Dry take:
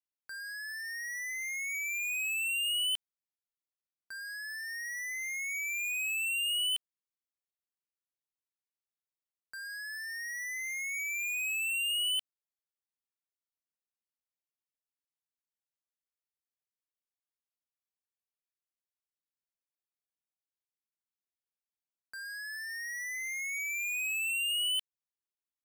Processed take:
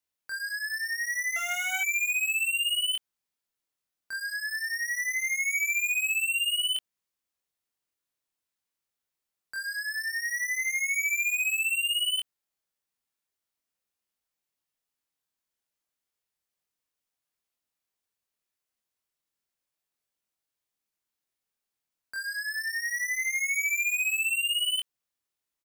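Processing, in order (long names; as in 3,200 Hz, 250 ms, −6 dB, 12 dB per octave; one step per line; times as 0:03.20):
0:01.36–0:01.81: sub-harmonics by changed cycles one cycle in 3, muted
brickwall limiter −35 dBFS, peak gain reduction 5.5 dB
double-tracking delay 24 ms −2.5 dB
level +6 dB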